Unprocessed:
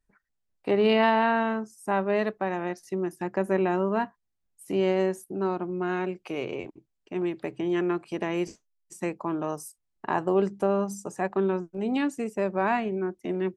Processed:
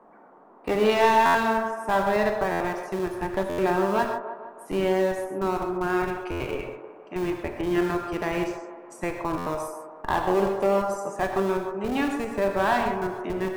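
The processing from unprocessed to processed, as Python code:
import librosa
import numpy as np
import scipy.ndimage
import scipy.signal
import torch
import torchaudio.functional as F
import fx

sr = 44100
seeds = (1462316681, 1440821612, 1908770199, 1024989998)

p1 = fx.peak_eq(x, sr, hz=1400.0, db=6.5, octaves=2.5)
p2 = fx.schmitt(p1, sr, flips_db=-22.0)
p3 = p1 + F.gain(torch.from_numpy(p2), -7.0).numpy()
p4 = fx.dmg_noise_band(p3, sr, seeds[0], low_hz=190.0, high_hz=1100.0, level_db=-51.0)
p5 = np.clip(p4, -10.0 ** (-12.0 / 20.0), 10.0 ** (-12.0 / 20.0))
p6 = p5 + fx.echo_wet_bandpass(p5, sr, ms=156, feedback_pct=54, hz=710.0, wet_db=-7.0, dry=0)
p7 = fx.rev_gated(p6, sr, seeds[1], gate_ms=160, shape='flat', drr_db=4.0)
p8 = fx.buffer_glitch(p7, sr, at_s=(1.25, 2.51, 3.49, 6.31, 9.37), block=512, repeats=7)
y = F.gain(torch.from_numpy(p8), -3.5).numpy()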